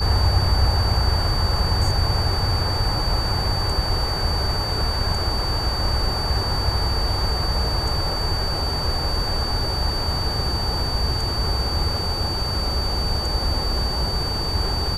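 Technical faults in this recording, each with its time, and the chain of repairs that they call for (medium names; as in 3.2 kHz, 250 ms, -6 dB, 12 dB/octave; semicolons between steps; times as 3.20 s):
whine 4.6 kHz -26 dBFS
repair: band-stop 4.6 kHz, Q 30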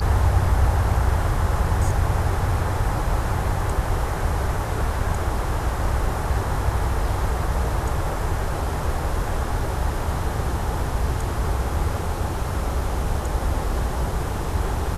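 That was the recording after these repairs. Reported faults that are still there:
nothing left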